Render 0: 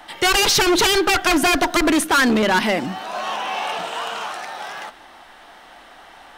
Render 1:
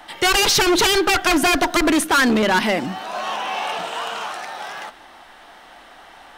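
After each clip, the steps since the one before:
no processing that can be heard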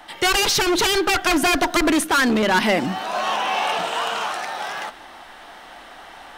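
speech leveller within 3 dB 0.5 s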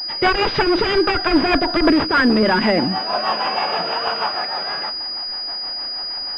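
rotating-speaker cabinet horn 6.3 Hz
switching amplifier with a slow clock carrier 4,900 Hz
level +5.5 dB

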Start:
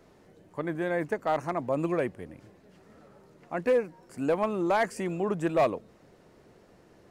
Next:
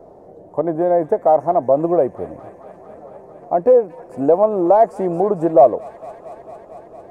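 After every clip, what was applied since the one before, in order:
drawn EQ curve 230 Hz 0 dB, 700 Hz +13 dB, 1,500 Hz −10 dB, 2,800 Hz −19 dB, 6,100 Hz −14 dB, 9,400 Hz −12 dB
delay with a high-pass on its return 226 ms, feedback 82%, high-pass 1,900 Hz, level −11 dB
in parallel at +3 dB: downward compressor, threshold −25 dBFS, peak gain reduction 15.5 dB
on the sum: level +1 dB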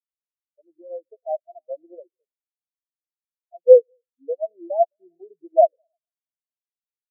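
on a send: echo through a band-pass that steps 105 ms, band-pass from 310 Hz, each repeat 0.7 octaves, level −10 dB
on the sum: every bin expanded away from the loudest bin 4 to 1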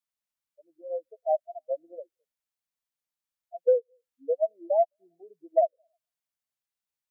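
parametric band 370 Hz −13 dB 0.44 octaves
downward compressor 12 to 1, threshold −22 dBFS, peak gain reduction 15 dB
level +3.5 dB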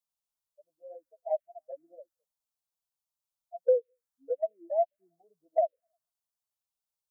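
phaser swept by the level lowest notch 330 Hz, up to 1,300 Hz, full sweep at −20 dBFS

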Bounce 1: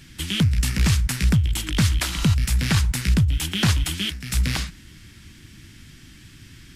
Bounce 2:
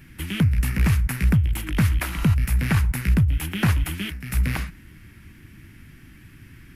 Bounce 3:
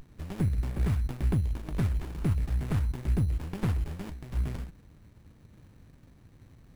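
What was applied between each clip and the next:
flat-topped bell 5,200 Hz −12.5 dB
steady tone 10,000 Hz −33 dBFS; windowed peak hold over 65 samples; level −7.5 dB

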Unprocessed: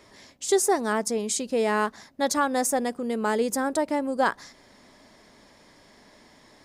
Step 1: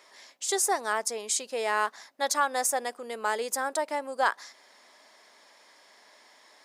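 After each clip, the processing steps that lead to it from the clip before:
high-pass filter 670 Hz 12 dB per octave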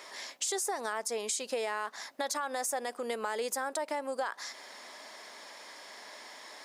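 brickwall limiter −23 dBFS, peak gain reduction 11 dB
downward compressor 3 to 1, threshold −42 dBFS, peak gain reduction 10.5 dB
level +8.5 dB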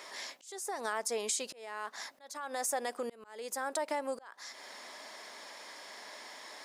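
volume swells 480 ms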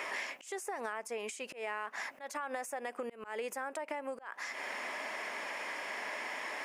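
downward compressor 16 to 1, threshold −44 dBFS, peak gain reduction 15.5 dB
high shelf with overshoot 3,200 Hz −6.5 dB, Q 3
level +9 dB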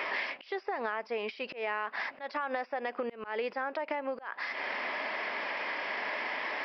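downsampling to 11,025 Hz
level +5 dB

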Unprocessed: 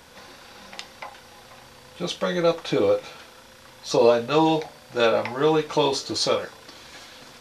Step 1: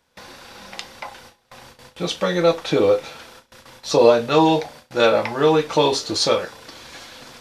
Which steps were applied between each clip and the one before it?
noise gate with hold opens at −36 dBFS
level +4 dB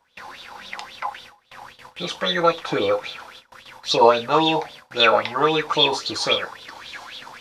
auto-filter bell 3.7 Hz 840–3,700 Hz +18 dB
level −6 dB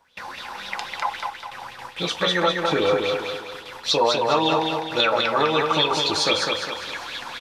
downward compressor 4 to 1, threshold −21 dBFS, peak gain reduction 11 dB
on a send: repeating echo 203 ms, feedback 44%, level −4 dB
on the sum: level +3 dB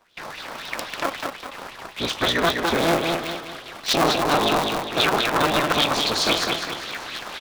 sub-harmonics by changed cycles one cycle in 3, inverted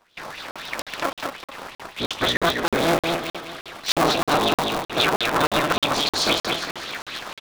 regular buffer underruns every 0.31 s, samples 2,048, zero, from 0:00.51

